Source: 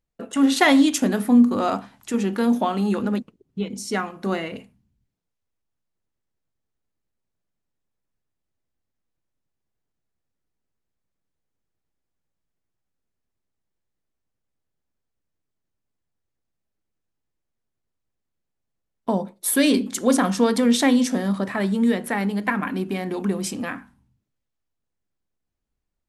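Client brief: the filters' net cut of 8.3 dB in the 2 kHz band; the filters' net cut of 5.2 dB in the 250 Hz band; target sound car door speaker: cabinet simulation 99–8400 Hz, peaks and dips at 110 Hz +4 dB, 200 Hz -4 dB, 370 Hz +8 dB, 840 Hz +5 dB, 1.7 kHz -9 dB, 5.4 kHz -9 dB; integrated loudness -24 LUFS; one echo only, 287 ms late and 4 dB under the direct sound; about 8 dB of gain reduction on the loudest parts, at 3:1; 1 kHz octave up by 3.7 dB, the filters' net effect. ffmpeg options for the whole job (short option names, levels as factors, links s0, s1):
-af "equalizer=f=250:t=o:g=-6,equalizer=f=1000:t=o:g=3.5,equalizer=f=2000:t=o:g=-5.5,acompressor=threshold=0.0631:ratio=3,highpass=99,equalizer=f=110:t=q:w=4:g=4,equalizer=f=200:t=q:w=4:g=-4,equalizer=f=370:t=q:w=4:g=8,equalizer=f=840:t=q:w=4:g=5,equalizer=f=1700:t=q:w=4:g=-9,equalizer=f=5400:t=q:w=4:g=-9,lowpass=f=8400:w=0.5412,lowpass=f=8400:w=1.3066,aecho=1:1:287:0.631,volume=1.33"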